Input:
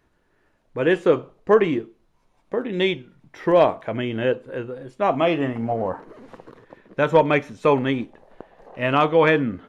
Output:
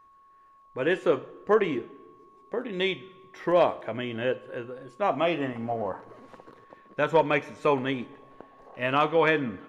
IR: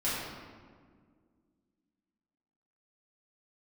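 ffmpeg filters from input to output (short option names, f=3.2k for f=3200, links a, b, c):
-filter_complex "[0:a]lowshelf=f=450:g=-5,aeval=exprs='val(0)+0.00316*sin(2*PI*1100*n/s)':c=same,asplit=2[a][b];[1:a]atrim=start_sample=2205,asetrate=57330,aresample=44100,highshelf=f=3.8k:g=11.5[c];[b][c]afir=irnorm=-1:irlink=0,volume=-26dB[d];[a][d]amix=inputs=2:normalize=0,volume=-4dB"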